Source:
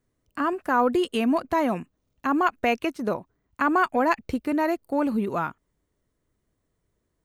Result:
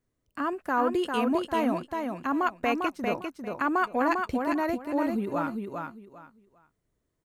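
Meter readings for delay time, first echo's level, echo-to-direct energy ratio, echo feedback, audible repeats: 399 ms, −4.5 dB, −4.5 dB, 22%, 3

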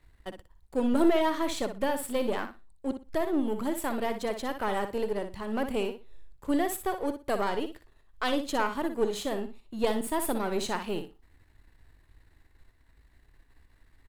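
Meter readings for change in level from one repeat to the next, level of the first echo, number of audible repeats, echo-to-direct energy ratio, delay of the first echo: −14.0 dB, −9.0 dB, 2, −9.0 dB, 60 ms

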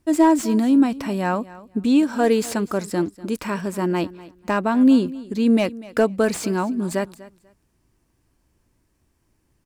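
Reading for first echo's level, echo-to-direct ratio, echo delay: −19.0 dB, −19.0 dB, 245 ms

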